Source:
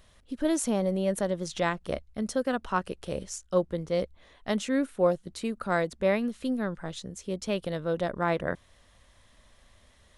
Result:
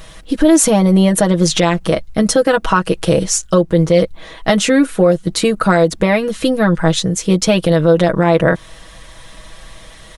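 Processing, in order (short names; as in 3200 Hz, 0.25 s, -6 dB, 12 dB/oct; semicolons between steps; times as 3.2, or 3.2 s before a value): compressor 6:1, threshold -28 dBFS, peak gain reduction 10 dB; comb 6.2 ms, depth 80%; maximiser +21 dB; gain -1 dB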